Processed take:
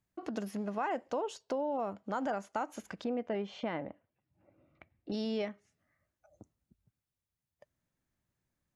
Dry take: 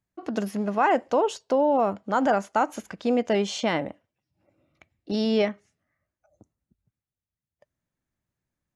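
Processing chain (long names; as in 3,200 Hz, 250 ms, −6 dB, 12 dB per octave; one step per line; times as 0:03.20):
0:03.04–0:05.12: low-pass filter 2,200 Hz 12 dB per octave
downward compressor 2 to 1, threshold −42 dBFS, peak gain reduction 13.5 dB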